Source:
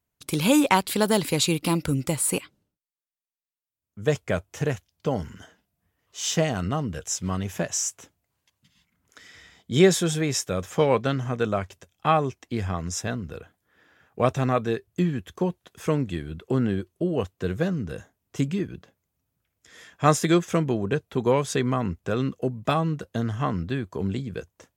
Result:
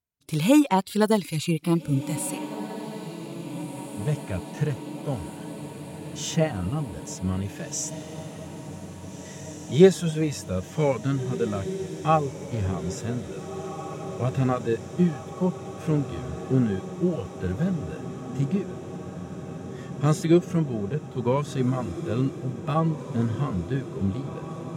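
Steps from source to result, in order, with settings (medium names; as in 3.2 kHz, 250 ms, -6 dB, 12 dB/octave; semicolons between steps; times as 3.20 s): harmonic-percussive split percussive -16 dB; gate -53 dBFS, range -9 dB; reverb removal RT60 0.8 s; on a send: echo that smears into a reverb 1762 ms, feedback 76%, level -12 dB; on the sum: trim +3 dB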